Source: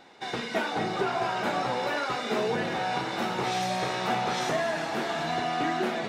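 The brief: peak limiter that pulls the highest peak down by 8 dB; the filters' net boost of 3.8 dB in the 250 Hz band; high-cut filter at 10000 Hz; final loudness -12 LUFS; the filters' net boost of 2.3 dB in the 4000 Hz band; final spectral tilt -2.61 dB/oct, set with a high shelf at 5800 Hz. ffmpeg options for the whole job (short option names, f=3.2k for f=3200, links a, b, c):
-af "lowpass=10k,equalizer=f=250:t=o:g=5,equalizer=f=4k:t=o:g=4.5,highshelf=f=5.8k:g=-5,volume=19.5dB,alimiter=limit=-3.5dB:level=0:latency=1"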